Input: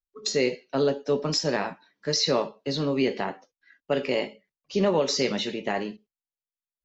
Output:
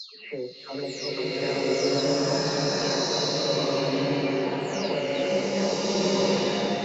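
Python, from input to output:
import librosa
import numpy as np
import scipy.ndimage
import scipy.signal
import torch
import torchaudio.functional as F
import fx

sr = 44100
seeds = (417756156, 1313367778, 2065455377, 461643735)

y = fx.spec_delay(x, sr, highs='early', ms=490)
y = fx.rev_bloom(y, sr, seeds[0], attack_ms=1420, drr_db=-11.0)
y = F.gain(torch.from_numpy(y), -8.0).numpy()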